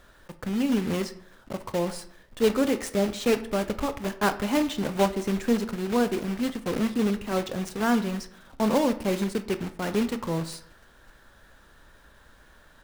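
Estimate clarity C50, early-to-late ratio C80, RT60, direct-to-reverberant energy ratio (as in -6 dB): 14.0 dB, 17.5 dB, 0.65 s, 10.0 dB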